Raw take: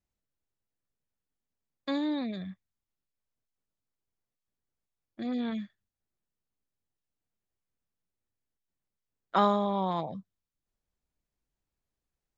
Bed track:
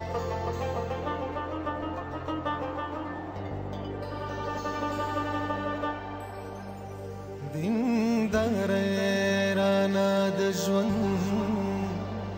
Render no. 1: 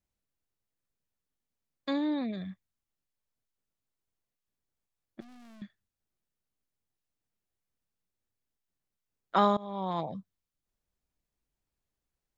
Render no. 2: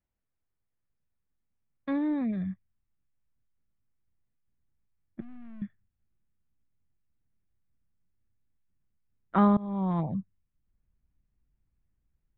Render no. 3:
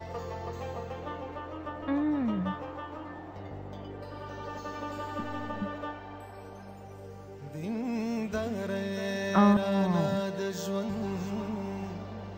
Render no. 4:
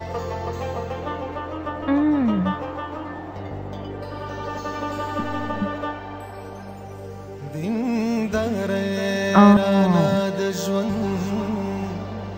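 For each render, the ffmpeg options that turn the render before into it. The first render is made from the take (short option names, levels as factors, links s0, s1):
-filter_complex "[0:a]asettb=1/sr,asplit=3[s0][s1][s2];[s0]atrim=end=1.934[s3];[s1]atrim=start=1.93:end=2.38,asetpts=PTS-STARTPTS,afade=t=in:d=0.004:c=qsin,afade=t=out:st=0.446:d=0.004:c=qsin,aemphasis=mode=reproduction:type=50fm[s4];[s2]atrim=start=2.376[s5];[s3][s4]acrossfade=d=0.004:c1=hsin:c2=qsin[s6];[s6][s5]acrossfade=d=0.004:c1=qsin:c2=hsin,asettb=1/sr,asplit=3[s7][s8][s9];[s7]atrim=end=5.204[s10];[s8]atrim=start=5.2:end=5.62,asetpts=PTS-STARTPTS,afade=t=in:d=0.004:c=qsin,afade=t=out:st=0.416:d=0.004:c=qsin,aeval=exprs='(tanh(447*val(0)+0.55)-tanh(0.55))/447':c=same[s11];[s9]atrim=start=5.616[s12];[s10][s11]acrossfade=d=0.004:c1=hsin:c2=qsin[s13];[s13][s12]acrossfade=d=0.004:c1=qsin:c2=hsin,asplit=2[s14][s15];[s14]atrim=end=9.57,asetpts=PTS-STARTPTS,afade=t=out:st=9.566:d=0.004:c=hsin:silence=0.0891251[s16];[s15]atrim=start=9.57,asetpts=PTS-STARTPTS,afade=t=in:d=0.45:silence=0.0891251[s17];[s16][s17]concat=n=2:v=0:a=1"
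-af "lowpass=f=2400:w=0.5412,lowpass=f=2400:w=1.3066,asubboost=boost=5:cutoff=230"
-filter_complex "[1:a]volume=0.473[s0];[0:a][s0]amix=inputs=2:normalize=0"
-af "volume=2.99"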